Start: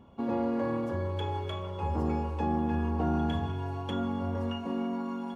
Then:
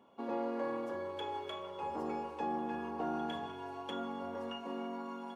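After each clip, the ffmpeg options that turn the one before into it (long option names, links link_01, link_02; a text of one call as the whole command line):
ffmpeg -i in.wav -af "highpass=350,volume=-3.5dB" out.wav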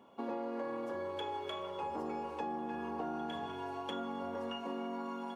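ffmpeg -i in.wav -af "acompressor=threshold=-39dB:ratio=6,volume=3.5dB" out.wav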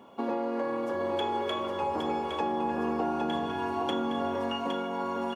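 ffmpeg -i in.wav -af "aecho=1:1:813:0.531,volume=8dB" out.wav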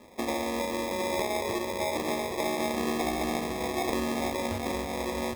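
ffmpeg -i in.wav -af "flanger=delay=4.9:depth=3.7:regen=-78:speed=0.87:shape=sinusoidal,acrusher=samples=30:mix=1:aa=0.000001,volume=4.5dB" out.wav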